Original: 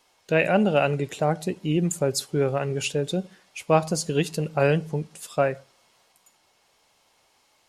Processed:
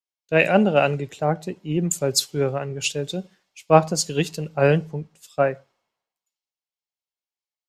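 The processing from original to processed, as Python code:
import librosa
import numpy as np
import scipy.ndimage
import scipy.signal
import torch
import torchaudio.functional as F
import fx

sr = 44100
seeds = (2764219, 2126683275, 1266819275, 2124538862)

y = fx.peak_eq(x, sr, hz=9900.0, db=-10.5, octaves=0.27)
y = fx.band_widen(y, sr, depth_pct=100)
y = y * 10.0 ** (1.0 / 20.0)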